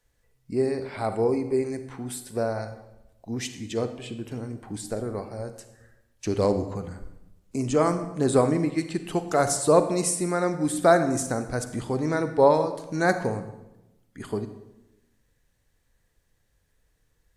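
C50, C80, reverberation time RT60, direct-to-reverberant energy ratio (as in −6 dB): 10.5 dB, 13.0 dB, 0.95 s, 9.5 dB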